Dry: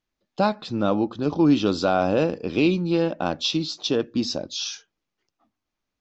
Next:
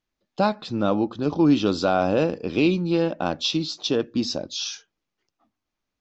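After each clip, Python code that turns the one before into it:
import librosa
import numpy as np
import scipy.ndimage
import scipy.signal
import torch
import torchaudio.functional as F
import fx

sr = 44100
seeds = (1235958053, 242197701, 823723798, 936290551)

y = x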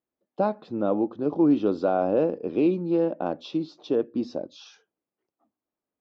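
y = fx.bandpass_q(x, sr, hz=440.0, q=0.93)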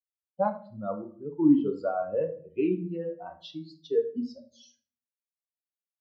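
y = fx.bin_expand(x, sr, power=3.0)
y = fx.room_shoebox(y, sr, seeds[0], volume_m3=41.0, walls='mixed', distance_m=0.34)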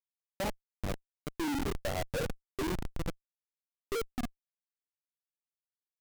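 y = fx.schmitt(x, sr, flips_db=-27.5)
y = y * librosa.db_to_amplitude(-1.5)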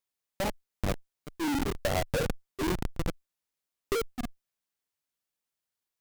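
y = fx.diode_clip(x, sr, knee_db=-42.0)
y = y * librosa.db_to_amplitude(7.5)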